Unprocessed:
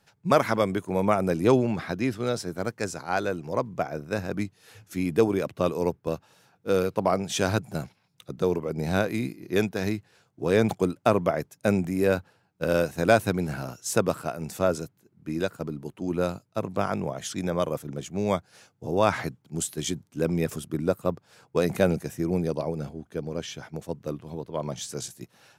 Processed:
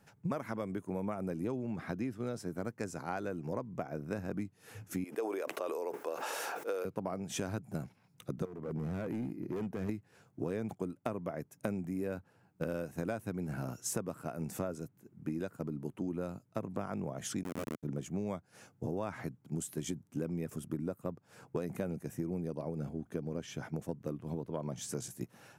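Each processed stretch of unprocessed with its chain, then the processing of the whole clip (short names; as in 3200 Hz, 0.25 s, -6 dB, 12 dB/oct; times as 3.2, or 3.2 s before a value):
5.04–6.85 HPF 430 Hz 24 dB/oct + sustainer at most 23 dB/s
8.45–9.89 high shelf 2100 Hz -10 dB + compressor 2:1, threshold -34 dBFS + hard clip -32.5 dBFS
17.43–17.83 Schmitt trigger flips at -22 dBFS + HPF 180 Hz
whole clip: ten-band EQ 125 Hz +3 dB, 250 Hz +5 dB, 4000 Hz -8 dB; compressor 8:1, threshold -34 dBFS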